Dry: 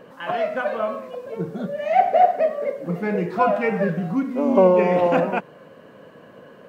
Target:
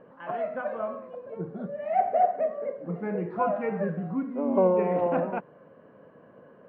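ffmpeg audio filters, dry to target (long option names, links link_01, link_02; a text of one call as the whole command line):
ffmpeg -i in.wav -af "lowpass=1500,volume=-7dB" out.wav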